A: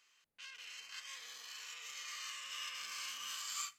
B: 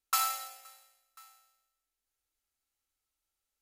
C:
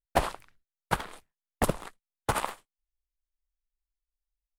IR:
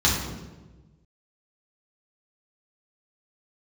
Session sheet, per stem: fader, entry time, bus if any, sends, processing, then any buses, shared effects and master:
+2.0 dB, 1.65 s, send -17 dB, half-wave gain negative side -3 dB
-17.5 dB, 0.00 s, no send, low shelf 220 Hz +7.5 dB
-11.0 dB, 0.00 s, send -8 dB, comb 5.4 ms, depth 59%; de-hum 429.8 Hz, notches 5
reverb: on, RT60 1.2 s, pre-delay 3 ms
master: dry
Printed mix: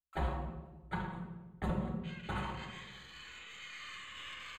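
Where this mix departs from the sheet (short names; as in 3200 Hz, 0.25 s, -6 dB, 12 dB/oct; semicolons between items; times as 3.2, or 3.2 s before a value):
stem B -17.5 dB -> -27.5 dB; stem C -11.0 dB -> -19.0 dB; master: extra running mean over 8 samples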